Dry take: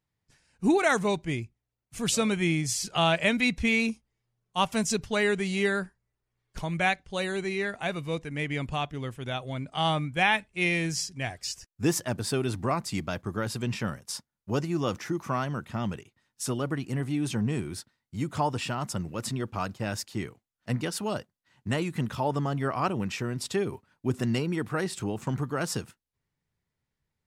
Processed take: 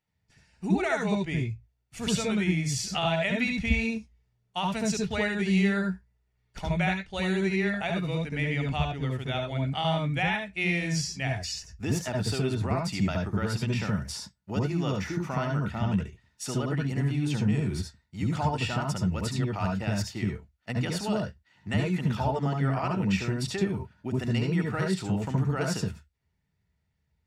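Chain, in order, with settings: compression, threshold -27 dBFS, peak gain reduction 9 dB; reverberation RT60 0.10 s, pre-delay 69 ms, DRR 3 dB; trim -5.5 dB

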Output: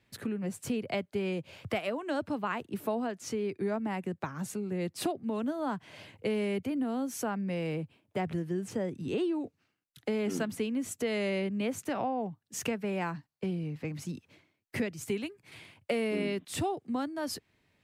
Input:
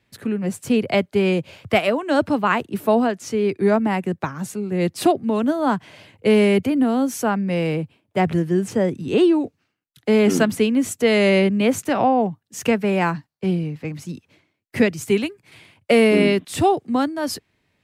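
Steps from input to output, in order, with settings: compression 2.5:1, threshold -31 dBFS, peak gain reduction 13.5 dB; trim -3.5 dB

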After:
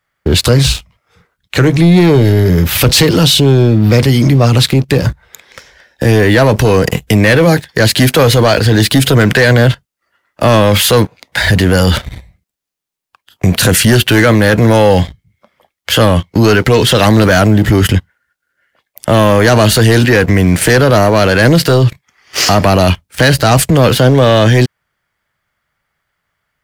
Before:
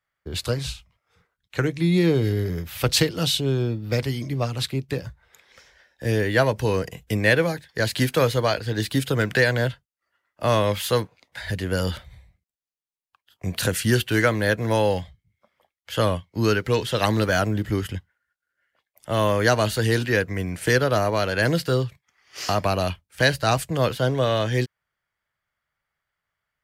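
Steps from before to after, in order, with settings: peaking EQ 220 Hz +3.5 dB 1.8 oct; waveshaping leveller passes 2; loudness maximiser +17 dB; trim -1 dB

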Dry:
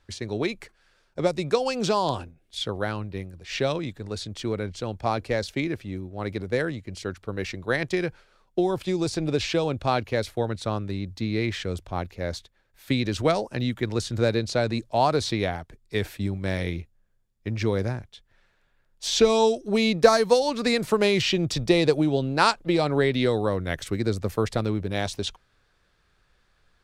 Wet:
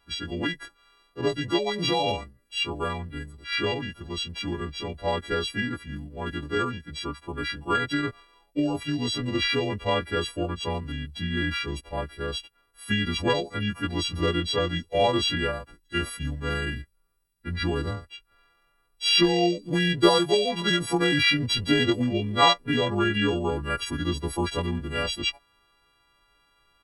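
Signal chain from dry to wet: partials quantised in pitch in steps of 3 st; pitch shift -4 st; peaking EQ 6.3 kHz -13 dB 0.38 oct; trim -2 dB

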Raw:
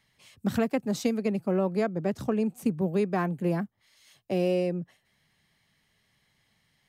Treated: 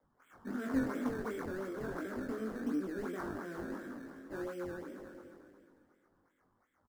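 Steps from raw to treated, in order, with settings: spectral sustain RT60 2.43 s; high-pass 150 Hz 24 dB/octave; three-band isolator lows -17 dB, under 420 Hz, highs -12 dB, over 2.6 kHz; hard clipper -23.5 dBFS, distortion -19 dB; vowel filter i; decimation with a swept rate 15×, swing 100% 2.8 Hz; chorus 1.8 Hz, delay 20 ms, depth 3.1 ms; resonant high shelf 1.9 kHz -9 dB, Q 3; on a send: delay 568 ms -17 dB; on the sum: trim +11 dB

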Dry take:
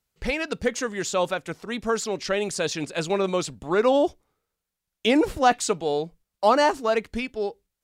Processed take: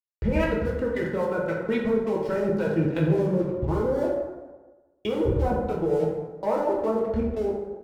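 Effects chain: high-pass 61 Hz 24 dB/octave; RIAA curve playback; low-pass that closes with the level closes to 660 Hz, closed at -16 dBFS; comb 2.1 ms, depth 46%; waveshaping leveller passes 1; in parallel at +1 dB: peak limiter -16.5 dBFS, peak gain reduction 9.5 dB; on the sum: level held to a coarse grid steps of 18 dB; crossover distortion -42.5 dBFS; harmonic tremolo 3.6 Hz, depth 70%, crossover 550 Hz; on a send: frequency-shifting echo 89 ms, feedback 65%, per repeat +36 Hz, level -24 dB; on the sum: plate-style reverb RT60 1.2 s, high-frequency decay 0.5×, DRR -4 dB; trim -5.5 dB

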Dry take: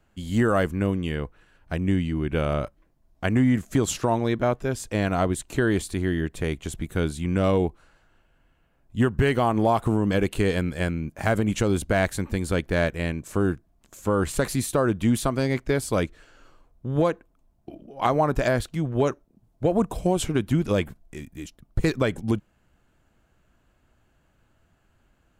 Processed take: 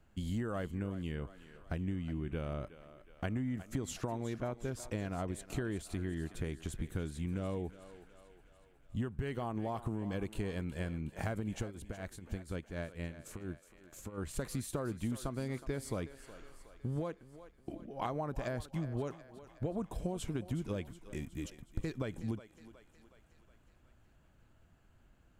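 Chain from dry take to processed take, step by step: bass shelf 290 Hz +5 dB; compression 5:1, threshold -30 dBFS, peak gain reduction 16 dB; 11.55–14.18 s: tremolo triangle 4.2 Hz, depth 85%; thinning echo 367 ms, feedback 61%, high-pass 380 Hz, level -13 dB; trim -5 dB

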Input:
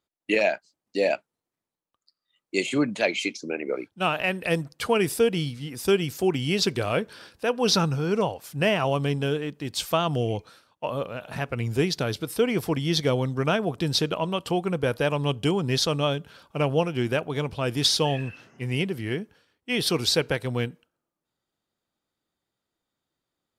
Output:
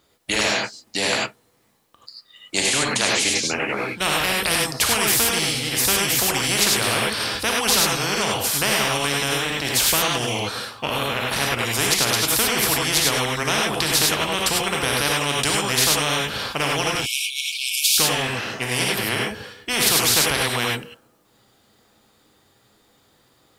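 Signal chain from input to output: 16.95–17.98 s: brick-wall FIR high-pass 2.2 kHz; gated-style reverb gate 120 ms rising, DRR -2.5 dB; spectrum-flattening compressor 4:1; trim +2.5 dB

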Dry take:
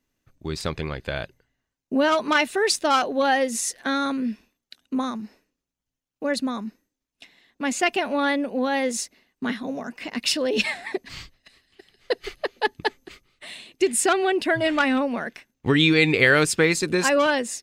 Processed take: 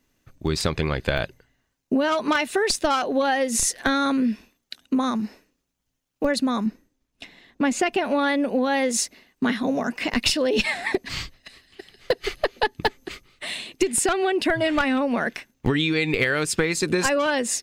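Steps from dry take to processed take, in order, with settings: 6.66–8.04 s: tilt EQ -1.5 dB/octave; compression 16:1, threshold -26 dBFS, peak gain reduction 14.5 dB; in parallel at -5.5 dB: Schmitt trigger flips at -20 dBFS; on the sum: trim +8 dB

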